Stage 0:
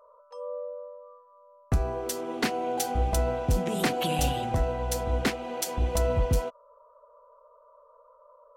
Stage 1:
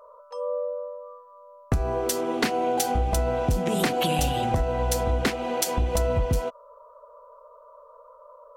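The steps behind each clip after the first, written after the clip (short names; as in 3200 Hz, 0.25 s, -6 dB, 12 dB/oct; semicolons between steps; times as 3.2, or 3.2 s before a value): compressor, threshold -27 dBFS, peak gain reduction 8 dB; gain +7 dB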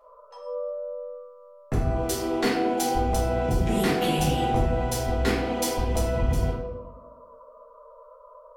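reverb RT60 1.1 s, pre-delay 4 ms, DRR -7.5 dB; gain -8 dB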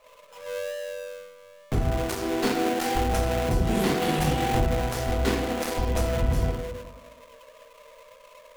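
switching dead time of 0.26 ms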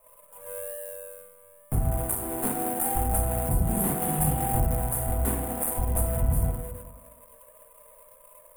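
EQ curve 160 Hz 0 dB, 410 Hz -10 dB, 770 Hz -2 dB, 3300 Hz -17 dB, 5500 Hz -27 dB, 9300 Hz +13 dB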